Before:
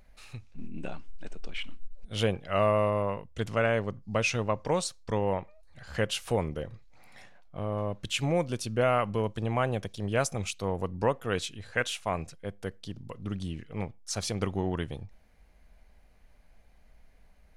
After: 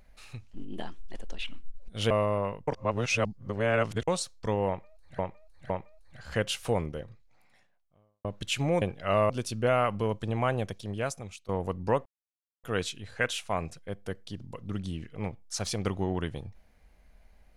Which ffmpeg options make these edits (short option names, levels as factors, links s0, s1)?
-filter_complex "[0:a]asplit=13[s0][s1][s2][s3][s4][s5][s6][s7][s8][s9][s10][s11][s12];[s0]atrim=end=0.484[s13];[s1]atrim=start=0.48:end=1.61,asetpts=PTS-STARTPTS,asetrate=51597,aresample=44100,atrim=end_sample=42592,asetpts=PTS-STARTPTS[s14];[s2]atrim=start=1.606:end=2.272[s15];[s3]atrim=start=2.748:end=3.322[s16];[s4]atrim=start=3.318:end=4.722,asetpts=PTS-STARTPTS,areverse[s17];[s5]atrim=start=4.718:end=5.832[s18];[s6]atrim=start=5.318:end=5.832[s19];[s7]atrim=start=5.318:end=7.87,asetpts=PTS-STARTPTS,afade=t=out:st=1.102:d=1.45:c=qua[s20];[s8]atrim=start=7.87:end=8.442,asetpts=PTS-STARTPTS,afade=t=in:d=0.004:c=hsin[s21];[s9]atrim=start=2.268:end=2.752[s22];[s10]atrim=start=8.438:end=10.63,asetpts=PTS-STARTPTS,afade=t=out:st=1.342:d=0.85:silence=0.125893[s23];[s11]atrim=start=10.63:end=11.2,asetpts=PTS-STARTPTS,afade=t=in:d=0.004:c=hsin:silence=0.125893,afade=t=out:st=0.566:d=0.004:c=hsin,apad=pad_dur=0.58[s24];[s12]atrim=start=11.2,asetpts=PTS-STARTPTS,afade=t=in:d=0.004:c=hsin[s25];[s13][s14]acrossfade=d=0.004:c1=hsin:c2=hsin[s26];[s26][s15]acrossfade=d=0.004:c1=hsin:c2=hsin[s27];[s27][s16]acrossfade=d=0.004:c1=hsin:c2=hsin[s28];[s28][s17]acrossfade=d=0.004:c1=hsin:c2=hsin[s29];[s29][s18]acrossfade=d=0.004:c1=hsin:c2=hsin[s30];[s30][s19]acrossfade=d=0.004:c1=hsin:c2=hsin[s31];[s20][s21]concat=n=2:v=0:a=1[s32];[s31][s32]acrossfade=d=0.004:c1=hsin:c2=hsin[s33];[s33][s22]acrossfade=d=0.004:c1=hsin:c2=hsin[s34];[s23][s24][s25]concat=n=3:v=0:a=1[s35];[s34][s35]acrossfade=d=0.004:c1=hsin:c2=hsin"